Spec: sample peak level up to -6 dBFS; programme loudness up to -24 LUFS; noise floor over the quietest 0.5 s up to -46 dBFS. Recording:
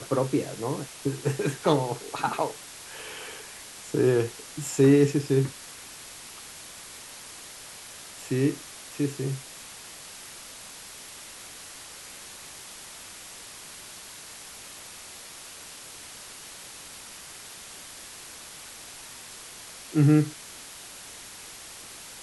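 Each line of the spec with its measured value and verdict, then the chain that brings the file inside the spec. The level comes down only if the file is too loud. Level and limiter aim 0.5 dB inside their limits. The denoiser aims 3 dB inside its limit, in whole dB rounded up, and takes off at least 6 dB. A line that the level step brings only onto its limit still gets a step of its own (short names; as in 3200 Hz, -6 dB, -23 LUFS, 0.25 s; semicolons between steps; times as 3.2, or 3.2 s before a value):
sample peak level -7.5 dBFS: OK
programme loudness -28.0 LUFS: OK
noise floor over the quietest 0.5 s -44 dBFS: fail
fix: denoiser 6 dB, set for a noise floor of -44 dBFS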